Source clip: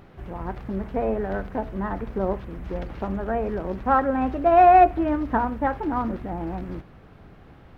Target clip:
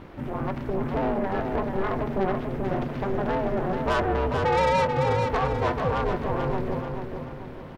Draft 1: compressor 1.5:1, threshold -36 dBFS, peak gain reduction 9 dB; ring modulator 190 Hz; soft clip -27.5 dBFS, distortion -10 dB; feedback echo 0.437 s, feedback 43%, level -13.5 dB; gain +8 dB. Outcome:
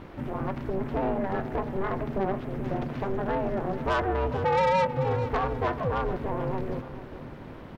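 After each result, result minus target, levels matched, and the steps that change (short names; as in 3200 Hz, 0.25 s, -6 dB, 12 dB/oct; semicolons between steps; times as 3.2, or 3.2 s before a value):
echo-to-direct -8 dB; compressor: peak gain reduction +3 dB
change: feedback echo 0.437 s, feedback 43%, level -5.5 dB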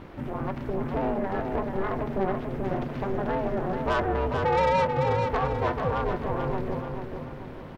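compressor: peak gain reduction +3 dB
change: compressor 1.5:1, threshold -27 dBFS, peak gain reduction 6 dB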